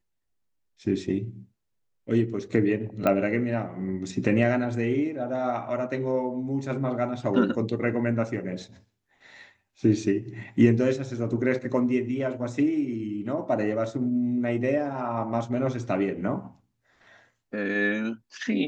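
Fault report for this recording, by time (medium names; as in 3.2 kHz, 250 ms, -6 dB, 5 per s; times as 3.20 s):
3.07 s: pop -12 dBFS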